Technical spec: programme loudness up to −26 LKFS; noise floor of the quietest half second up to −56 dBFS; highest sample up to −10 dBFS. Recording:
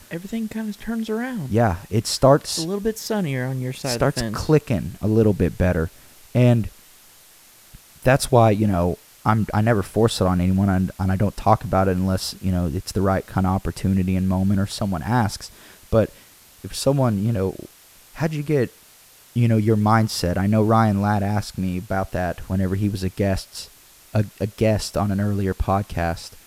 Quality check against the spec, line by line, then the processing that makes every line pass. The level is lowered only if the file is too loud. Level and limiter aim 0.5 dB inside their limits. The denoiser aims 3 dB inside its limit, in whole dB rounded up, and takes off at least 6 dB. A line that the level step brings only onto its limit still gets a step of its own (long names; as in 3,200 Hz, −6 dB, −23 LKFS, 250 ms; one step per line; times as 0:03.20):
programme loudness −21.5 LKFS: out of spec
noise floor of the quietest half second −50 dBFS: out of spec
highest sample −2.5 dBFS: out of spec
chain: broadband denoise 6 dB, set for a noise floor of −50 dBFS
level −5 dB
brickwall limiter −10.5 dBFS